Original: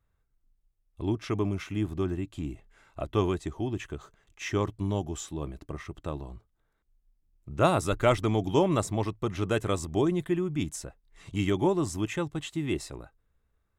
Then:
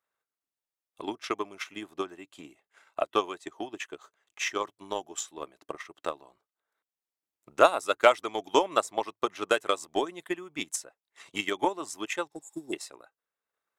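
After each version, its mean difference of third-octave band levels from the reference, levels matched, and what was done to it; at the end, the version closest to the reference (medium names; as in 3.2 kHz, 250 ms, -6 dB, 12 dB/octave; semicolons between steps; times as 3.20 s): 7.0 dB: spectral replace 12.33–12.71 s, 810–6700 Hz before; high-pass 560 Hz 12 dB/octave; harmonic-percussive split harmonic -4 dB; transient shaper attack +10 dB, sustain -4 dB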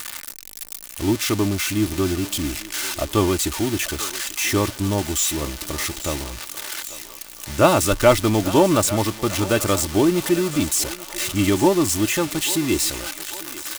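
11.0 dB: zero-crossing glitches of -19 dBFS; treble shelf 10 kHz -11 dB; comb 3.4 ms, depth 39%; on a send: thinning echo 842 ms, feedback 69%, high-pass 520 Hz, level -14 dB; on the sum: trim +7.5 dB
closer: first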